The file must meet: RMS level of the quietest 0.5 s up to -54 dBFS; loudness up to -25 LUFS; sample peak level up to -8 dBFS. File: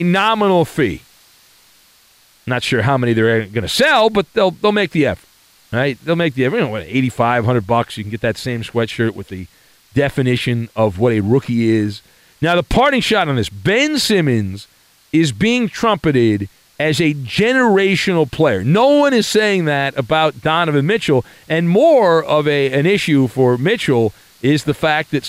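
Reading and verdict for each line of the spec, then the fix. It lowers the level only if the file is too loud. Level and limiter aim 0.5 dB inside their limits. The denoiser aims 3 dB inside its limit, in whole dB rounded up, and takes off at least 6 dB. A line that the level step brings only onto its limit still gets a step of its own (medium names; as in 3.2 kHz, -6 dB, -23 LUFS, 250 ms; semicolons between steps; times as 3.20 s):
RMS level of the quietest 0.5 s -51 dBFS: fail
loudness -15.5 LUFS: fail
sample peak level -3.5 dBFS: fail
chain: trim -10 dB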